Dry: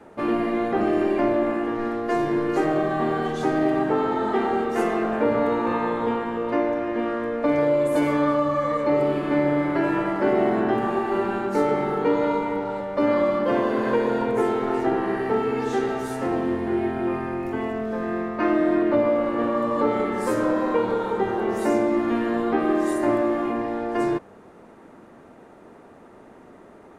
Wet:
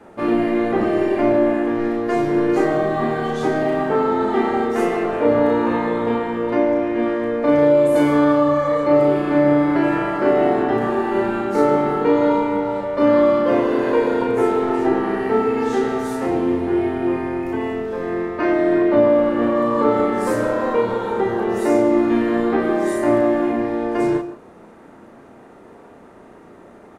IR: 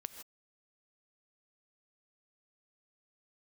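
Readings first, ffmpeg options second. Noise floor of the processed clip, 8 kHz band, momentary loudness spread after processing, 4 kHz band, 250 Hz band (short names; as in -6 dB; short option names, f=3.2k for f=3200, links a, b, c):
-44 dBFS, n/a, 6 LU, +3.5 dB, +5.0 dB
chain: -filter_complex "[0:a]asplit=2[a][b];[b]adelay=34,volume=-3.5dB[c];[a][c]amix=inputs=2:normalize=0,asplit=2[d][e];[1:a]atrim=start_sample=2205[f];[e][f]afir=irnorm=-1:irlink=0,volume=4.5dB[g];[d][g]amix=inputs=2:normalize=0,volume=-4.5dB"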